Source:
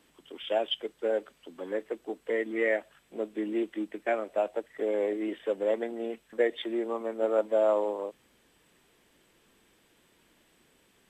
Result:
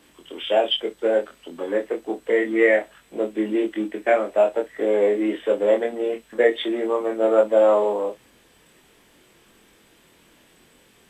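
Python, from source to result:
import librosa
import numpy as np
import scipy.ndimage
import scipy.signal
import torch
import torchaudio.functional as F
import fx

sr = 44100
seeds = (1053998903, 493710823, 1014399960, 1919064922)

y = fx.room_early_taps(x, sr, ms=(24, 59), db=(-3.0, -16.5))
y = F.gain(torch.from_numpy(y), 7.5).numpy()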